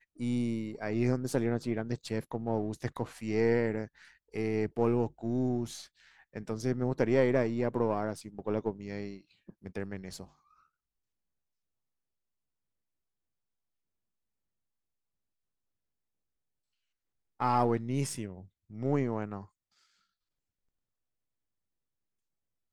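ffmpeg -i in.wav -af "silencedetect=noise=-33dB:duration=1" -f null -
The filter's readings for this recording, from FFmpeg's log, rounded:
silence_start: 10.22
silence_end: 17.40 | silence_duration: 7.18
silence_start: 19.41
silence_end: 22.72 | silence_duration: 3.31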